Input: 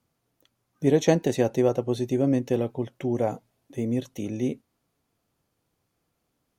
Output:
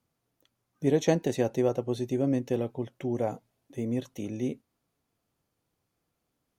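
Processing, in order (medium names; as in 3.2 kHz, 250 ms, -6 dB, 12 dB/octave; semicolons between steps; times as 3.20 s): 3.85–4.26 s: dynamic bell 1.1 kHz, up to +5 dB, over -46 dBFS, Q 1; trim -4 dB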